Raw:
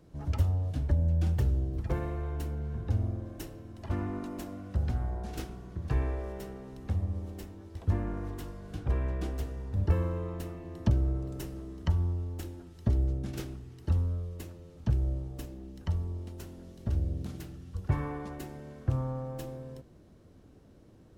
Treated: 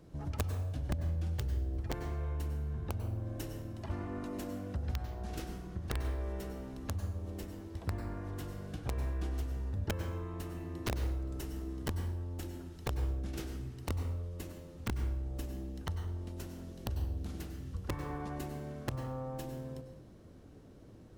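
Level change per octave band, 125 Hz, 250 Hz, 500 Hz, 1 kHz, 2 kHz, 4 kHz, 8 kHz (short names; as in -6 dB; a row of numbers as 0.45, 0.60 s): -6.5 dB, -4.0 dB, -3.0 dB, -1.5 dB, +0.5 dB, +2.5 dB, n/a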